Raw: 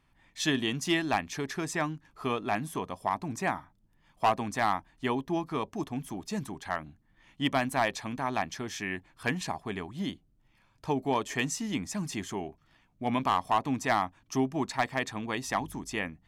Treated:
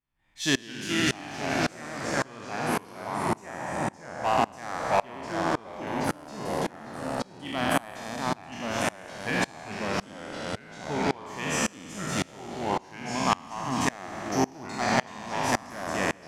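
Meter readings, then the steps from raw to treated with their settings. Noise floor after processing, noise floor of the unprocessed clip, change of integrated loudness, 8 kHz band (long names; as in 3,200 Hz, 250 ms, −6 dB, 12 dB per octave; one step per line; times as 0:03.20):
−50 dBFS, −68 dBFS, +2.0 dB, +4.5 dB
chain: peak hold with a decay on every bin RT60 1.96 s
delay with pitch and tempo change per echo 152 ms, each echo −2 semitones, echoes 3
tremolo with a ramp in dB swelling 1.8 Hz, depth 27 dB
level +2.5 dB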